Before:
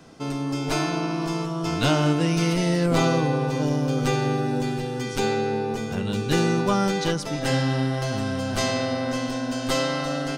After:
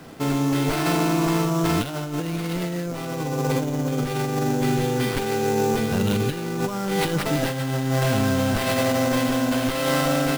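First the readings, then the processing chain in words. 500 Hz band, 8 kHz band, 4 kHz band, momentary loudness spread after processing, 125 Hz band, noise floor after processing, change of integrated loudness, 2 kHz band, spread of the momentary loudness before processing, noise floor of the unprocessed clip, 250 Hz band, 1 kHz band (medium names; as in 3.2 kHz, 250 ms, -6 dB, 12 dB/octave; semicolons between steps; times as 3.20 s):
+1.0 dB, +2.0 dB, -0.5 dB, 6 LU, +0.5 dB, -30 dBFS, +1.0 dB, +1.5 dB, 7 LU, -30 dBFS, +1.5 dB, +1.0 dB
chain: in parallel at -3.5 dB: saturation -22 dBFS, distortion -11 dB; on the sum: compressor with a negative ratio -22 dBFS, ratio -0.5; sample-rate reducer 6.7 kHz, jitter 20%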